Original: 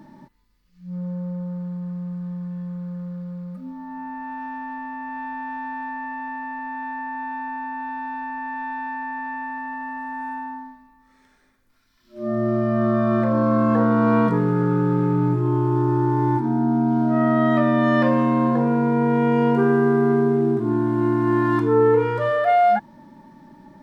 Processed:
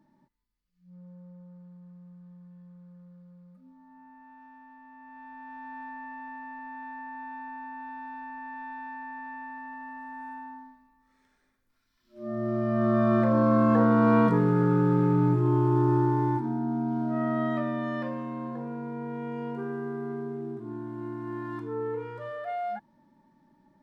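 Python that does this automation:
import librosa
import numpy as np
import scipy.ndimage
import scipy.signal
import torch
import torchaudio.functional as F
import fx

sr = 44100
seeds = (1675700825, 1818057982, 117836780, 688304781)

y = fx.gain(x, sr, db=fx.line((4.79, -19.5), (5.78, -10.0), (12.24, -10.0), (13.02, -3.0), (15.96, -3.0), (16.61, -9.5), (17.41, -9.5), (18.23, -16.5)))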